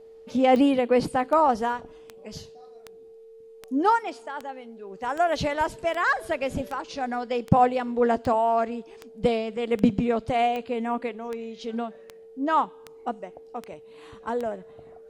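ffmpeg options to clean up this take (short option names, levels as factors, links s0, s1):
-af "adeclick=t=4,bandreject=f=450:w=30"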